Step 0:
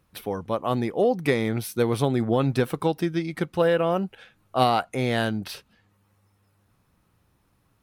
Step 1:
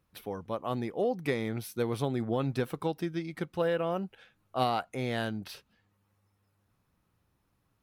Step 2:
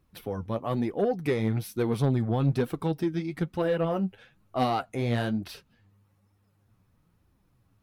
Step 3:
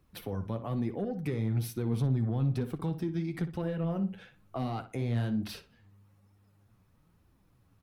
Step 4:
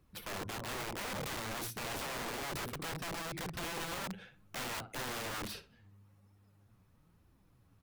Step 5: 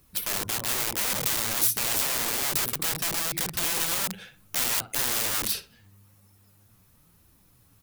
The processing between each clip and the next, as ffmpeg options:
-af "equalizer=f=8900:w=5.4:g=-3.5,volume=0.398"
-af "flanger=delay=2.5:depth=8.4:regen=41:speed=1.1:shape=triangular,lowshelf=f=290:g=8.5,asoftclip=type=tanh:threshold=0.0794,volume=1.88"
-filter_complex "[0:a]acrossover=split=230[s0][s1];[s1]acompressor=threshold=0.0141:ratio=6[s2];[s0][s2]amix=inputs=2:normalize=0,asplit=2[s3][s4];[s4]alimiter=level_in=1.19:limit=0.0631:level=0:latency=1,volume=0.841,volume=1.33[s5];[s3][s5]amix=inputs=2:normalize=0,asplit=2[s6][s7];[s7]adelay=60,lowpass=f=3100:p=1,volume=0.282,asplit=2[s8][s9];[s9]adelay=60,lowpass=f=3100:p=1,volume=0.3,asplit=2[s10][s11];[s11]adelay=60,lowpass=f=3100:p=1,volume=0.3[s12];[s6][s8][s10][s12]amix=inputs=4:normalize=0,volume=0.473"
-af "aeval=exprs='(mod(50.1*val(0)+1,2)-1)/50.1':c=same,volume=0.891"
-af "crystalizer=i=4:c=0,volume=1.68"

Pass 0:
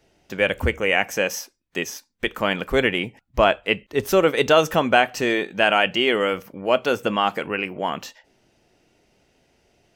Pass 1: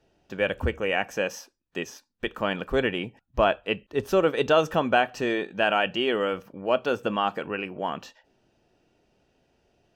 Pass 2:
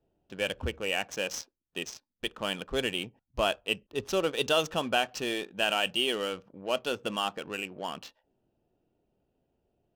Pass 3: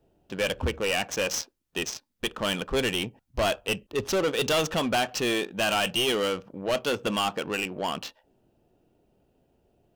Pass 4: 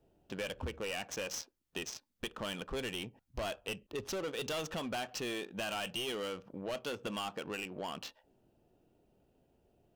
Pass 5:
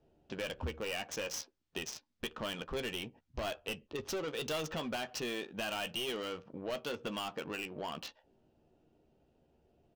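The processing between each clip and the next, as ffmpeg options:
-af "lowpass=f=3200:p=1,bandreject=f=2100:w=6.1,volume=0.631"
-af "aexciter=amount=4.7:drive=3.6:freq=2800,adynamicsmooth=sensitivity=7:basefreq=990,volume=0.447"
-af "asoftclip=type=tanh:threshold=0.0335,volume=2.82"
-af "acompressor=threshold=0.0178:ratio=3,volume=0.631"
-filter_complex "[0:a]asplit=2[s0][s1];[s1]adelay=13,volume=0.355[s2];[s0][s2]amix=inputs=2:normalize=0,acrossover=split=7300[s3][s4];[s4]acrusher=bits=7:mix=0:aa=0.000001[s5];[s3][s5]amix=inputs=2:normalize=0"

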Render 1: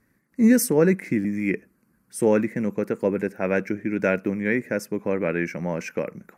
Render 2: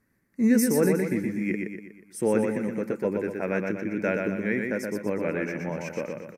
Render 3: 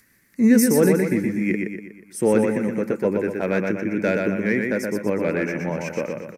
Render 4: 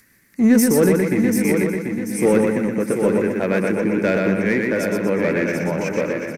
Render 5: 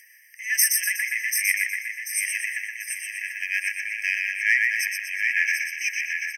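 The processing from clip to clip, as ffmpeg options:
-af "aecho=1:1:121|242|363|484|605|726:0.631|0.297|0.139|0.0655|0.0308|0.0145,volume=0.562"
-filter_complex "[0:a]acrossover=split=720|1800[s0][s1][s2];[s1]asoftclip=type=hard:threshold=0.0224[s3];[s2]acompressor=mode=upward:threshold=0.00178:ratio=2.5[s4];[s0][s3][s4]amix=inputs=3:normalize=0,volume=1.88"
-filter_complex "[0:a]asplit=2[s0][s1];[s1]asoftclip=type=hard:threshold=0.0794,volume=0.473[s2];[s0][s2]amix=inputs=2:normalize=0,aecho=1:1:738|1476|2214|2952:0.501|0.185|0.0686|0.0254"
-af "bandreject=f=1600:w=25,afftfilt=real='re*eq(mod(floor(b*sr/1024/1600),2),1)':imag='im*eq(mod(floor(b*sr/1024/1600),2),1)':win_size=1024:overlap=0.75,volume=2.11"

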